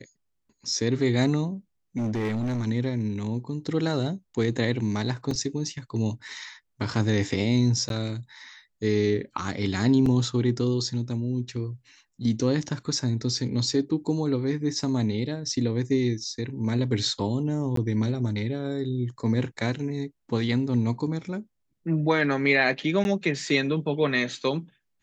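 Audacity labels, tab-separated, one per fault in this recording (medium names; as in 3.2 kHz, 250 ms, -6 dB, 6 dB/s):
1.970000	2.650000	clipped -24 dBFS
5.310000	5.310000	dropout 2.7 ms
7.890000	7.900000	dropout 12 ms
10.060000	10.060000	dropout 3.1 ms
17.760000	17.770000	dropout 13 ms
23.040000	23.050000	dropout 11 ms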